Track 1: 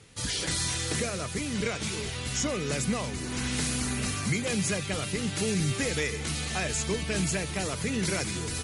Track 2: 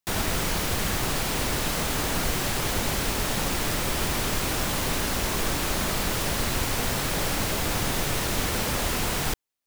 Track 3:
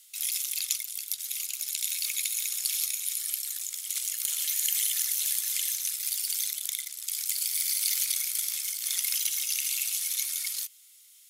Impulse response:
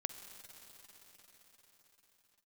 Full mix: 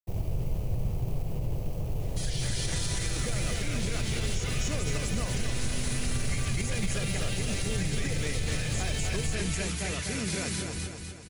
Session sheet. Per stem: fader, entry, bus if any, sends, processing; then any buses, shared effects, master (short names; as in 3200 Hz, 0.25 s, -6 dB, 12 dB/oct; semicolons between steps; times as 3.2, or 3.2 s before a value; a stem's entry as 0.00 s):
+0.5 dB, 2.00 s, bus A, no send, echo send -6 dB, dry
-2.0 dB, 0.00 s, bus A, send -5 dB, no echo send, median filter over 25 samples; graphic EQ 125/250/500/1000/2000/4000/8000 Hz +11/-9/+3/-8/-6/-10/-6 dB
off
bus A: 0.0 dB, HPF 1500 Hz 24 dB/oct; limiter -28.5 dBFS, peak gain reduction 10 dB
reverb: on, pre-delay 44 ms
echo: feedback echo 0.249 s, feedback 52%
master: expander -48 dBFS; low shelf 67 Hz +11 dB; limiter -20 dBFS, peak gain reduction 7 dB